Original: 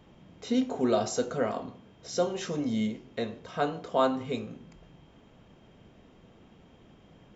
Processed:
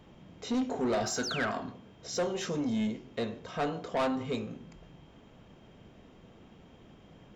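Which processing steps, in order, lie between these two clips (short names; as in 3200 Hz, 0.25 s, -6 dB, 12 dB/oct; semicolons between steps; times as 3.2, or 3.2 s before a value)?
1.23–1.51 painted sound fall 930–6900 Hz -39 dBFS; 1.03–1.72 thirty-one-band EQ 500 Hz -10 dB, 1600 Hz +11 dB, 5000 Hz +4 dB; soft clip -26 dBFS, distortion -10 dB; gain +1 dB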